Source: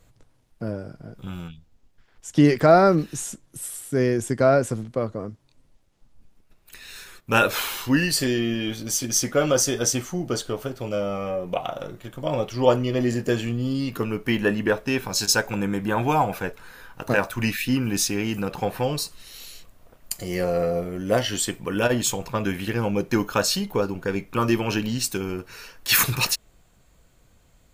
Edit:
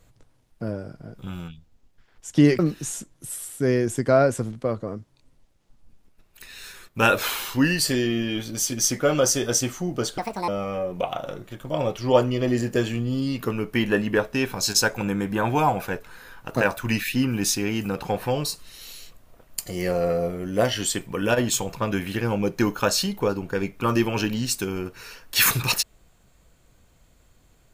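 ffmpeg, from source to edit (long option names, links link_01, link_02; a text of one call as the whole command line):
ffmpeg -i in.wav -filter_complex "[0:a]asplit=4[link_01][link_02][link_03][link_04];[link_01]atrim=end=2.592[link_05];[link_02]atrim=start=2.908:end=10.504[link_06];[link_03]atrim=start=10.5:end=11.01,asetpts=PTS-STARTPTS,asetrate=74529,aresample=44100,atrim=end_sample=13308,asetpts=PTS-STARTPTS[link_07];[link_04]atrim=start=11.006[link_08];[link_05][link_06]acrossfade=duration=0.004:curve1=hsin:curve2=hsin[link_09];[link_09][link_07]acrossfade=duration=0.004:curve1=hsin:curve2=hsin[link_10];[link_10][link_08]acrossfade=duration=0.004:curve1=hsin:curve2=hsin" out.wav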